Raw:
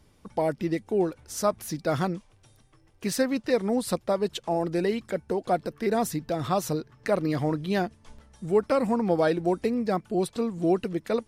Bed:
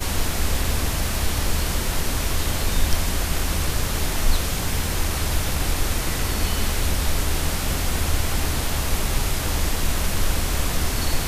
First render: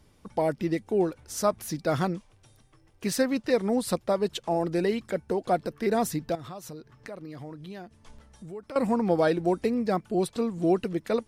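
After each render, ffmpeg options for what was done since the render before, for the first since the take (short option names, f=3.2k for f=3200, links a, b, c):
-filter_complex "[0:a]asettb=1/sr,asplit=3[a][b][c];[a]atrim=end=6.354[d];[b]atrim=start=6.35:end=8.76,asetpts=PTS-STARTPTS,afade=t=in:d=0.004:c=qsin,afade=t=out:st=2.406:d=0.004:c=qsin,acompressor=threshold=-42dB:ratio=3:attack=3.2:release=140:knee=1:detection=peak[e];[c]atrim=start=8.756[f];[d][e]acrossfade=d=0.004:c1=hsin:c2=qsin[g];[g][f]acrossfade=d=0.004:c1=qsin:c2=hsin"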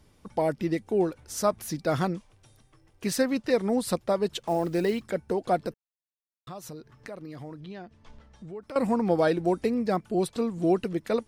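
-filter_complex "[0:a]asettb=1/sr,asplit=3[a][b][c];[a]atrim=end=4.394[d];[b]atrim=start=4.39:end=5.04,asetpts=PTS-STARTPTS,afade=t=in:d=0.004:c=qsin,afade=t=out:st=0.646:d=0.004:c=qsin,acrusher=bits=7:mode=log:mix=0:aa=0.000001[e];[c]atrim=start=5.036[f];[d][e]acrossfade=d=0.004:c1=hsin:c2=qsin[g];[g][f]acrossfade=d=0.004:c1=qsin:c2=hsin,asettb=1/sr,asplit=3[h][i][j];[h]atrim=end=7.604[k];[i]atrim=start=7.6:end=8.62,asetpts=PTS-STARTPTS,afade=t=in:d=0.004:c=qsin,afade=t=out:st=1.016:d=0.004:c=qsin,lowpass=4.8k[l];[j]atrim=start=8.616[m];[k][l]acrossfade=d=0.004:c1=hsin:c2=qsin[n];[n][m]acrossfade=d=0.004:c1=qsin:c2=hsin,asplit=3[o][p][q];[o]atrim=end=5.74,asetpts=PTS-STARTPTS,afade=t=out:st=5.736:d=0.004:c=hsin[r];[p]atrim=start=5.74:end=6.47,asetpts=PTS-STARTPTS,volume=0[s];[q]atrim=start=6.47,asetpts=PTS-STARTPTS,afade=t=in:d=0.004:c=hsin[t];[r][s][t]concat=n=3:v=0:a=1"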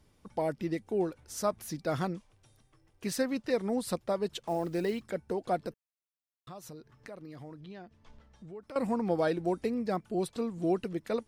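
-af "volume=-5.5dB"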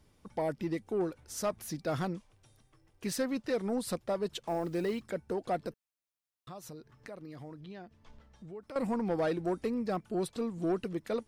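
-af "asoftclip=type=tanh:threshold=-23.5dB"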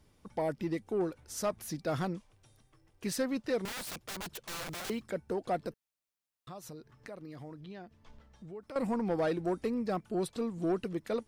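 -filter_complex "[0:a]asettb=1/sr,asplit=3[a][b][c];[a]atrim=end=3.654[d];[b]atrim=start=3.65:end=4.9,asetpts=PTS-STARTPTS,afade=t=in:d=0.004:c=qsin,afade=t=out:st=1.246:d=0.004:c=qsin,aeval=exprs='(mod(59.6*val(0)+1,2)-1)/59.6':c=same[e];[c]atrim=start=4.896[f];[d][e]acrossfade=d=0.004:c1=hsin:c2=qsin[g];[g][f]acrossfade=d=0.004:c1=qsin:c2=hsin"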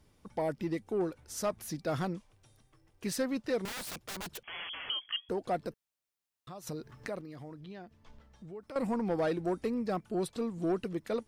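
-filter_complex "[0:a]asettb=1/sr,asplit=3[a][b][c];[a]atrim=end=4.434[d];[b]atrim=start=4.43:end=5.29,asetpts=PTS-STARTPTS,afade=t=in:d=0.004:c=qsin,afade=t=out:st=0.856:d=0.004:c=qsin,lowpass=f=2.9k:t=q:w=0.5098,lowpass=f=2.9k:t=q:w=0.6013,lowpass=f=2.9k:t=q:w=0.9,lowpass=f=2.9k:t=q:w=2.563,afreqshift=-3400[e];[c]atrim=start=5.286[f];[d][e]acrossfade=d=0.004:c1=hsin:c2=qsin[g];[g][f]acrossfade=d=0.004:c1=qsin:c2=hsin,asplit=3[h][i][j];[h]atrim=end=6.672[k];[i]atrim=start=6.668:end=7.212,asetpts=PTS-STARTPTS,volume=7.5dB[l];[j]atrim=start=7.208[m];[k][l]acrossfade=d=0.004:c1=hsin:c2=hsin[n];[n][m]acrossfade=d=0.004:c1=hsin:c2=hsin"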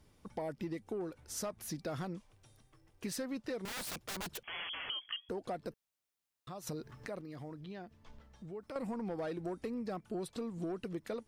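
-af "alimiter=level_in=3dB:limit=-24dB:level=0:latency=1:release=301,volume=-3dB,acompressor=threshold=-36dB:ratio=6"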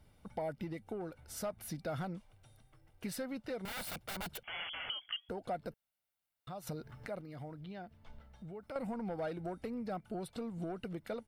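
-af "equalizer=f=6.4k:t=o:w=0.8:g=-8,aecho=1:1:1.4:0.38"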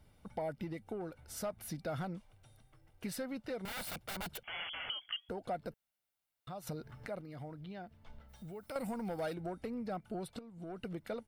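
-filter_complex "[0:a]asplit=3[a][b][c];[a]afade=t=out:st=8.28:d=0.02[d];[b]aemphasis=mode=production:type=75kf,afade=t=in:st=8.28:d=0.02,afade=t=out:st=9.33:d=0.02[e];[c]afade=t=in:st=9.33:d=0.02[f];[d][e][f]amix=inputs=3:normalize=0,asplit=2[g][h];[g]atrim=end=10.39,asetpts=PTS-STARTPTS,afade=t=out:st=10.386:d=0.004:c=hsin:silence=0.237137[i];[h]atrim=start=10.39,asetpts=PTS-STARTPTS,afade=t=in:d=0.44:c=qua:silence=0.237137[j];[i][j]concat=n=2:v=0:a=1"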